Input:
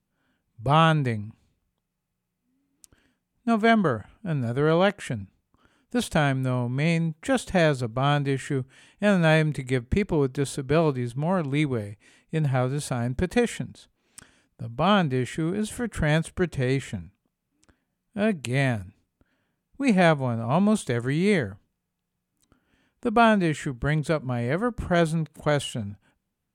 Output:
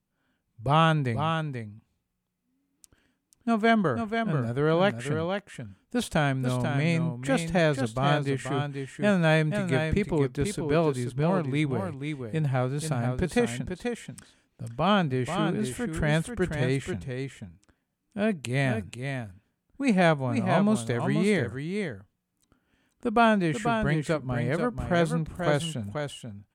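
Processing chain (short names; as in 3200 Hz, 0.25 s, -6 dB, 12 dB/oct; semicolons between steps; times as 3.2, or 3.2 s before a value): echo 0.486 s -6.5 dB; gain -2.5 dB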